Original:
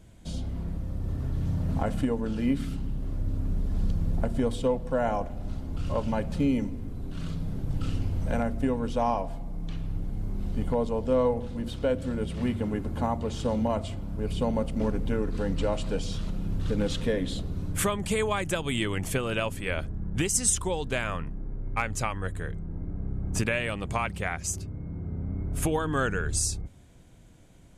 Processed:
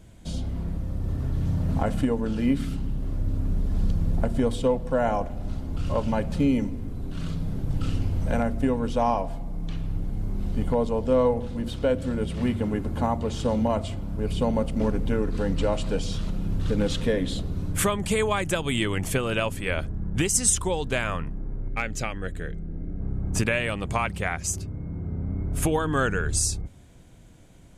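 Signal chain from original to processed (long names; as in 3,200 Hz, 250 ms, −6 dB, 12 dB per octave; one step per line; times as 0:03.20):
0:21.68–0:23.01: graphic EQ with 15 bands 100 Hz −7 dB, 1,000 Hz −11 dB, 10,000 Hz −9 dB
level +3 dB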